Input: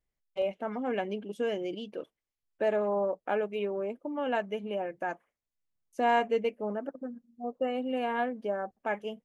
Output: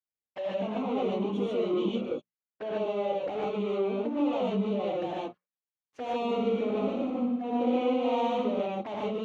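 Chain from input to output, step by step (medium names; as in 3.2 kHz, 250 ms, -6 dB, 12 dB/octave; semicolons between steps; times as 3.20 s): hum notches 60/120/180/240 Hz; compression 4:1, threshold -31 dBFS, peak gain reduction 8 dB; waveshaping leveller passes 5; peak limiter -25.5 dBFS, peak gain reduction 4 dB; touch-sensitive flanger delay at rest 8.7 ms, full sweep at -28.5 dBFS; band-pass 120–2700 Hz; 6.15–8.46 s: flutter echo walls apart 10.5 m, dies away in 0.8 s; gated-style reverb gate 170 ms rising, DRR -5 dB; trim -5.5 dB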